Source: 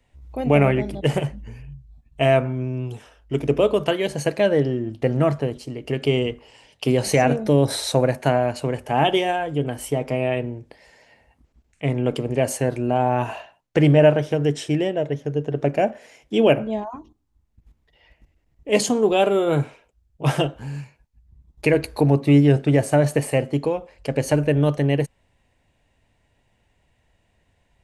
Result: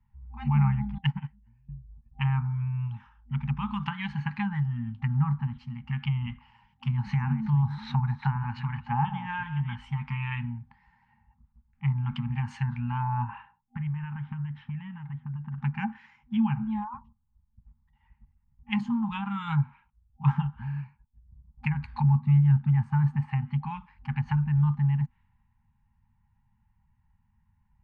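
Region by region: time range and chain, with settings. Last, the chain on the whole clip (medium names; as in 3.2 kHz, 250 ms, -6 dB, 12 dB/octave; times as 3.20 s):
0.98–1.69 s: treble shelf 3.4 kHz +10 dB + band-stop 1.2 kHz, Q 13 + upward expansion 2.5:1, over -29 dBFS
6.91–9.76 s: chunks repeated in reverse 362 ms, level -12 dB + distance through air 61 m
13.25–15.58 s: distance through air 380 m + compression 5:1, threshold -25 dBFS
whole clip: level-controlled noise filter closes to 850 Hz, open at -14 dBFS; FFT band-reject 240–790 Hz; low-pass that closes with the level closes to 850 Hz, closed at -22 dBFS; trim -1.5 dB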